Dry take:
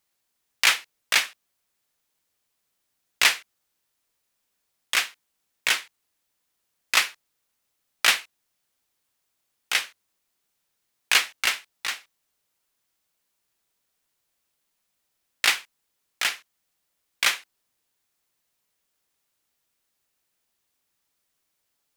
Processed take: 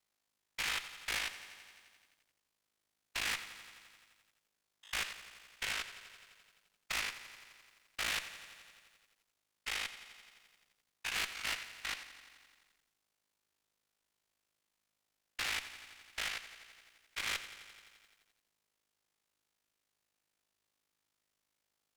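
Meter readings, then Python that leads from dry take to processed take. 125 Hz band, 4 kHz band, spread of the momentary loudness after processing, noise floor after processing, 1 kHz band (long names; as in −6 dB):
can't be measured, −14.0 dB, 19 LU, below −85 dBFS, −13.0 dB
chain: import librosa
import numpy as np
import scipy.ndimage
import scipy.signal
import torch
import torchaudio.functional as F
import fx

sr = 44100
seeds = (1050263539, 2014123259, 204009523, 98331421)

y = fx.spec_steps(x, sr, hold_ms=100)
y = fx.high_shelf(y, sr, hz=10000.0, db=-9.5)
y = y * np.sin(2.0 * np.pi * 26.0 * np.arange(len(y)) / sr)
y = fx.tube_stage(y, sr, drive_db=32.0, bias=0.25)
y = fx.echo_crushed(y, sr, ms=86, feedback_pct=80, bits=11, wet_db=-14.5)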